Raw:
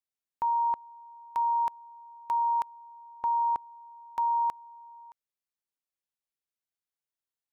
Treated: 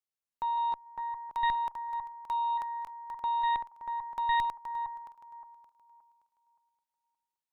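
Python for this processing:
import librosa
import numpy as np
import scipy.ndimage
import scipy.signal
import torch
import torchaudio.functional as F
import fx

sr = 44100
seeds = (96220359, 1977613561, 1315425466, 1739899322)

y = fx.reverse_delay_fb(x, sr, ms=286, feedback_pct=51, wet_db=-5.5)
y = fx.cheby_harmonics(y, sr, harmonics=(2, 3, 4), levels_db=(-7, -29, -14), full_scale_db=-19.0)
y = F.gain(torch.from_numpy(y), -3.5).numpy()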